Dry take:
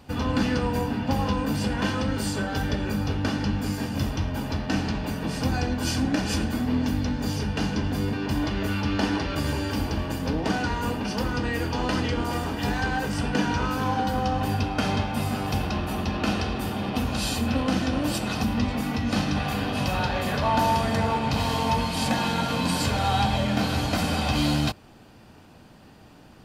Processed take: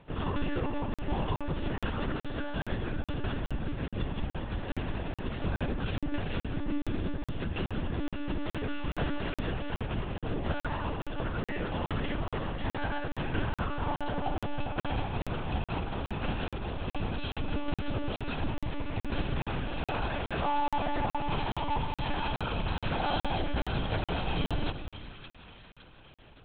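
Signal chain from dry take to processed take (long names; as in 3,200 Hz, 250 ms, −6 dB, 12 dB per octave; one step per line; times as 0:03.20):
echo with a time of its own for lows and highs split 1,100 Hz, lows 211 ms, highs 564 ms, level −11 dB
one-pitch LPC vocoder at 8 kHz 290 Hz
regular buffer underruns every 0.42 s, samples 2,048, zero, from 0:00.94
level −6 dB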